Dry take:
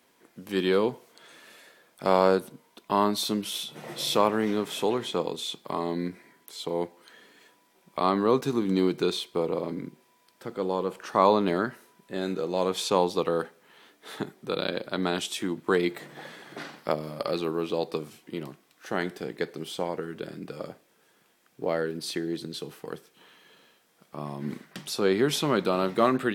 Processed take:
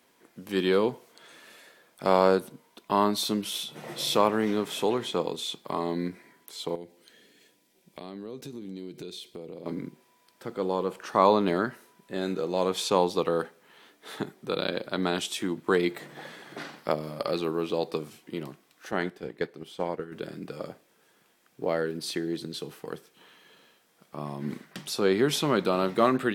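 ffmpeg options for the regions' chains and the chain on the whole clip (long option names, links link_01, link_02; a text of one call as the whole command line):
ffmpeg -i in.wav -filter_complex "[0:a]asettb=1/sr,asplit=3[link_01][link_02][link_03];[link_01]atrim=end=6.754[link_04];[link_02]atrim=start=6.75:end=9.66,asetpts=PTS-STARTPTS,afade=type=in:duration=0.004:curve=qsin,afade=type=out:start_time=2.906:duration=0.004:curve=qsin,equalizer=frequency=1100:width=1.1:gain=-14,acompressor=threshold=-38dB:ratio=4:attack=3.2:release=140:knee=1:detection=peak[link_05];[link_03]atrim=start=9.656[link_06];[link_04][link_05]acrossfade=duration=0.004:curve1=hsin:curve2=qsin[link_07];[link_07][link_06]acrossfade=duration=0.004:curve1=qsin:curve2=hsin,asettb=1/sr,asplit=3[link_08][link_09][link_10];[link_08]atrim=end=18.914[link_11];[link_09]atrim=start=18.91:end=20.12,asetpts=PTS-STARTPTS,afade=type=in:duration=0.004:curve=qsin,afade=type=out:start_time=1.206:duration=0.004:curve=qsin,agate=range=-7dB:threshold=-34dB:ratio=16:release=100:detection=peak,bass=frequency=250:gain=0,treble=frequency=4000:gain=-5[link_12];[link_10]atrim=start=20.116[link_13];[link_11][link_12]acrossfade=duration=0.004:curve1=hsin:curve2=qsin[link_14];[link_14][link_13]acrossfade=duration=0.004:curve1=qsin:curve2=hsin" out.wav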